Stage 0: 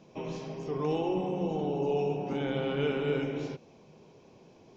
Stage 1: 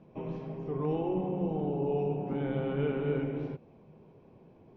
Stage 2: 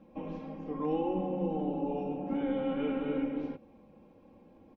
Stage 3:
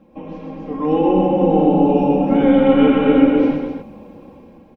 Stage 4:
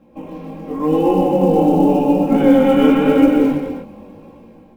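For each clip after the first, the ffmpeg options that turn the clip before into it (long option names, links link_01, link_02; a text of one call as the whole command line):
ffmpeg -i in.wav -af "lowpass=2000,lowshelf=frequency=230:gain=8,volume=-3.5dB" out.wav
ffmpeg -i in.wav -af "aecho=1:1:3.7:0.97,volume=-2.5dB" out.wav
ffmpeg -i in.wav -filter_complex "[0:a]dynaudnorm=framelen=380:gausssize=5:maxgain=11dB,asplit=2[link_01][link_02];[link_02]aecho=0:1:124|258:0.596|0.447[link_03];[link_01][link_03]amix=inputs=2:normalize=0,volume=6.5dB" out.wav
ffmpeg -i in.wav -af "acrusher=bits=9:mode=log:mix=0:aa=0.000001,flanger=delay=17:depth=6.9:speed=0.91,volume=3.5dB" out.wav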